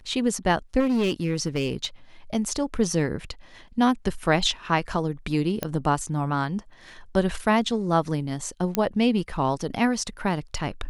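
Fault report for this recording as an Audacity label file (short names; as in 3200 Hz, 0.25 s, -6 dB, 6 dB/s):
0.790000	1.850000	clipped -19 dBFS
5.630000	5.630000	pop -11 dBFS
8.750000	8.750000	pop -7 dBFS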